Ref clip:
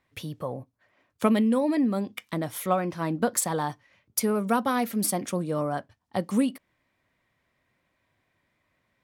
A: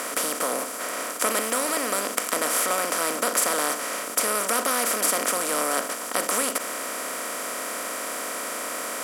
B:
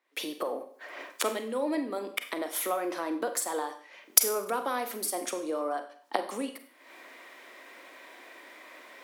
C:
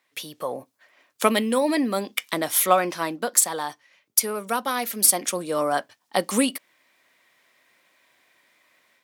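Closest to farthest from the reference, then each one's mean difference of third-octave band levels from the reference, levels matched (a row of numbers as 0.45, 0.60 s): C, B, A; 6.5, 9.0, 16.5 dB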